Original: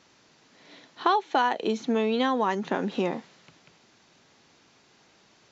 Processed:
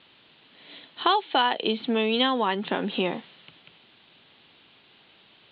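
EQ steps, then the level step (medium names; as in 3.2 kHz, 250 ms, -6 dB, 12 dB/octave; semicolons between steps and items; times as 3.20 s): steep low-pass 4.2 kHz 72 dB/octave; peaking EQ 3.1 kHz +11.5 dB 0.7 oct; 0.0 dB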